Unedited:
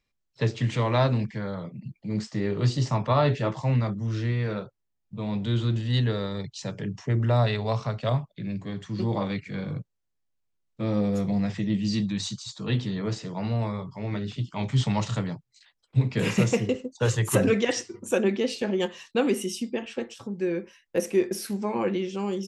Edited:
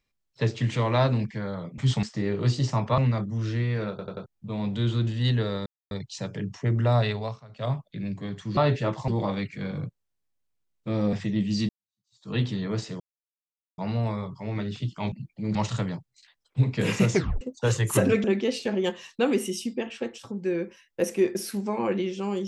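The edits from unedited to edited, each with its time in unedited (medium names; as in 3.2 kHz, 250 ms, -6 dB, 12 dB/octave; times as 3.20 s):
1.78–2.21 s: swap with 14.68–14.93 s
3.16–3.67 s: move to 9.01 s
4.59 s: stutter in place 0.09 s, 4 plays
6.35 s: insert silence 0.25 s
7.55–8.22 s: dip -19.5 dB, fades 0.30 s
11.06–11.47 s: delete
12.03–12.65 s: fade in exponential
13.34 s: insert silence 0.78 s
16.50 s: tape stop 0.29 s
17.62–18.20 s: delete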